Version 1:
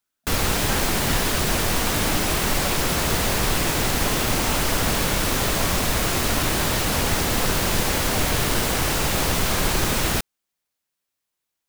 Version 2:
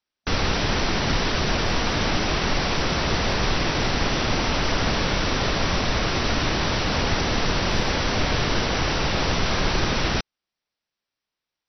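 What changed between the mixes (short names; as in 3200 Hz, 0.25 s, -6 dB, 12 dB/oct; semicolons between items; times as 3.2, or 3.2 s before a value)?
speech -10.5 dB; background: add brick-wall FIR low-pass 6000 Hz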